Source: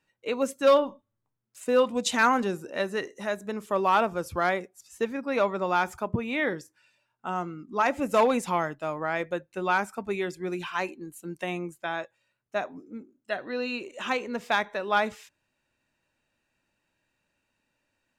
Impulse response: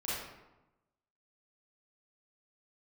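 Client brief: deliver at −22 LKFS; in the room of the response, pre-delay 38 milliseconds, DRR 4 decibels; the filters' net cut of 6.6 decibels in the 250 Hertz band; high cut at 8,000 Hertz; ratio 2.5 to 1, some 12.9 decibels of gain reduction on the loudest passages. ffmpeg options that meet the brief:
-filter_complex "[0:a]lowpass=8000,equalizer=frequency=250:width_type=o:gain=-8.5,acompressor=threshold=-37dB:ratio=2.5,asplit=2[link_01][link_02];[1:a]atrim=start_sample=2205,adelay=38[link_03];[link_02][link_03]afir=irnorm=-1:irlink=0,volume=-8.5dB[link_04];[link_01][link_04]amix=inputs=2:normalize=0,volume=15dB"

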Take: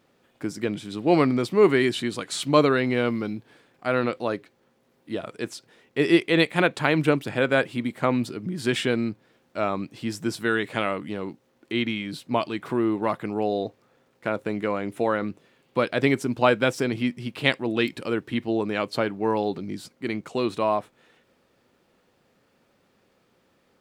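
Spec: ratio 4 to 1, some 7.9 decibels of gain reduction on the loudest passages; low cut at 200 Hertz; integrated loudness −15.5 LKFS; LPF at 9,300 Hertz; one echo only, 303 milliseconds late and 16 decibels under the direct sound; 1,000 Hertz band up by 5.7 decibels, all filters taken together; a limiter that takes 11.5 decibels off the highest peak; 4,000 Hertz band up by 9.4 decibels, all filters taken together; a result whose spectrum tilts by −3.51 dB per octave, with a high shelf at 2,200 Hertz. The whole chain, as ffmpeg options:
ffmpeg -i in.wav -af "highpass=200,lowpass=9300,equalizer=frequency=1000:width_type=o:gain=6,highshelf=frequency=2200:gain=3.5,equalizer=frequency=4000:width_type=o:gain=8.5,acompressor=threshold=-19dB:ratio=4,alimiter=limit=-14.5dB:level=0:latency=1,aecho=1:1:303:0.158,volume=12.5dB" out.wav

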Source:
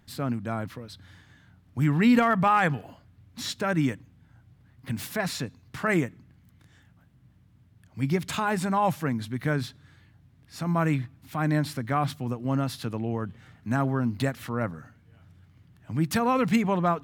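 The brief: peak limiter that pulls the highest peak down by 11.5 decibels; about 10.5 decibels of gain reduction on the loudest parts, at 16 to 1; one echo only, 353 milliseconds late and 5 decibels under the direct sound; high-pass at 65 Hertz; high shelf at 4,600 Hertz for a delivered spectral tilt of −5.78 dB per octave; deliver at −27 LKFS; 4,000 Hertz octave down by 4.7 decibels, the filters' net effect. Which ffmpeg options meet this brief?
ffmpeg -i in.wav -af "highpass=65,equalizer=frequency=4000:width_type=o:gain=-3.5,highshelf=frequency=4600:gain=-4.5,acompressor=threshold=-26dB:ratio=16,alimiter=level_in=3.5dB:limit=-24dB:level=0:latency=1,volume=-3.5dB,aecho=1:1:353:0.562,volume=10dB" out.wav

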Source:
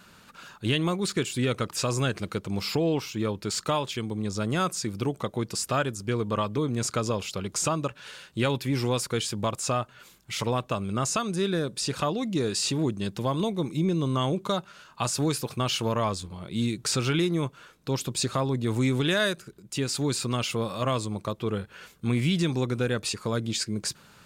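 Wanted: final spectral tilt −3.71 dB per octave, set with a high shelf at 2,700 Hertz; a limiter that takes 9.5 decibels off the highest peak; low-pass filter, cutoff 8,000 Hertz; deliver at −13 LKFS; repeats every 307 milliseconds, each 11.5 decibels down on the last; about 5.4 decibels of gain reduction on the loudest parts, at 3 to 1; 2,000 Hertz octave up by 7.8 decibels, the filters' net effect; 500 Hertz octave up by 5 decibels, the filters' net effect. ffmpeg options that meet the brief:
ffmpeg -i in.wav -af "lowpass=8000,equalizer=frequency=500:width_type=o:gain=5.5,equalizer=frequency=2000:width_type=o:gain=6,highshelf=frequency=2700:gain=9,acompressor=threshold=-24dB:ratio=3,alimiter=limit=-18.5dB:level=0:latency=1,aecho=1:1:307|614|921:0.266|0.0718|0.0194,volume=15.5dB" out.wav

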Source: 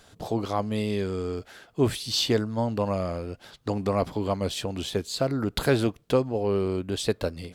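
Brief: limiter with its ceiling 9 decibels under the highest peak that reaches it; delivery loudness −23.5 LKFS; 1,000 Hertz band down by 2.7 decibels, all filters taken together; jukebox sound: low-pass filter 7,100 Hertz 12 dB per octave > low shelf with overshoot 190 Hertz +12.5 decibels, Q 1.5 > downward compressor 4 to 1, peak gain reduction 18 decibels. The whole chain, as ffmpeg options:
ffmpeg -i in.wav -af "equalizer=frequency=1000:width_type=o:gain=-3,alimiter=limit=-19.5dB:level=0:latency=1,lowpass=7100,lowshelf=frequency=190:width_type=q:width=1.5:gain=12.5,acompressor=threshold=-34dB:ratio=4,volume=12.5dB" out.wav

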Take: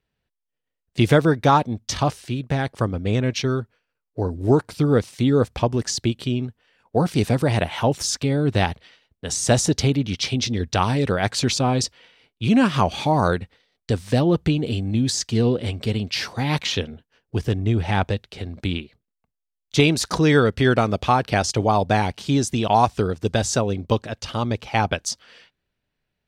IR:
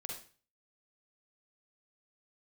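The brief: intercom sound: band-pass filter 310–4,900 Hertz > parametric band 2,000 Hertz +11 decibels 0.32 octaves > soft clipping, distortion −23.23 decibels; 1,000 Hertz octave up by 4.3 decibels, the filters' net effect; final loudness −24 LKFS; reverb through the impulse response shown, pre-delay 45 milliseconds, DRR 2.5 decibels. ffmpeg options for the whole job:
-filter_complex "[0:a]equalizer=frequency=1000:width_type=o:gain=5.5,asplit=2[link_01][link_02];[1:a]atrim=start_sample=2205,adelay=45[link_03];[link_02][link_03]afir=irnorm=-1:irlink=0,volume=-0.5dB[link_04];[link_01][link_04]amix=inputs=2:normalize=0,highpass=310,lowpass=4900,equalizer=frequency=2000:width_type=o:width=0.32:gain=11,asoftclip=threshold=-2dB,volume=-4dB"

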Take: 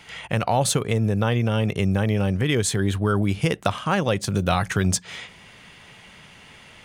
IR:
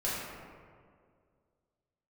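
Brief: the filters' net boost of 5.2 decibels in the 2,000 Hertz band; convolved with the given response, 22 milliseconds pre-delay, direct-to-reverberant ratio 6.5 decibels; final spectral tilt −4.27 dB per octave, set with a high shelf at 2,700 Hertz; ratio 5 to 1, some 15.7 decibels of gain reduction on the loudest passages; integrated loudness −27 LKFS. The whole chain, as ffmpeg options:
-filter_complex "[0:a]equalizer=frequency=2000:width_type=o:gain=5,highshelf=frequency=2700:gain=4,acompressor=threshold=-35dB:ratio=5,asplit=2[link_01][link_02];[1:a]atrim=start_sample=2205,adelay=22[link_03];[link_02][link_03]afir=irnorm=-1:irlink=0,volume=-13.5dB[link_04];[link_01][link_04]amix=inputs=2:normalize=0,volume=9.5dB"

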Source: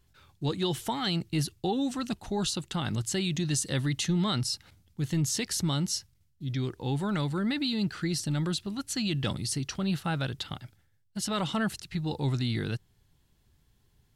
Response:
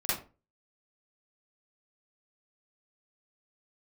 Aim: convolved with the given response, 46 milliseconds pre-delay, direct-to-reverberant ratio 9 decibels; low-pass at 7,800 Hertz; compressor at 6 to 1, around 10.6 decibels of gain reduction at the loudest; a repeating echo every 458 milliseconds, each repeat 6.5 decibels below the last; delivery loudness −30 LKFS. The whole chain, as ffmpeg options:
-filter_complex "[0:a]lowpass=7800,acompressor=threshold=-36dB:ratio=6,aecho=1:1:458|916|1374|1832|2290|2748:0.473|0.222|0.105|0.0491|0.0231|0.0109,asplit=2[link_01][link_02];[1:a]atrim=start_sample=2205,adelay=46[link_03];[link_02][link_03]afir=irnorm=-1:irlink=0,volume=-17dB[link_04];[link_01][link_04]amix=inputs=2:normalize=0,volume=8dB"

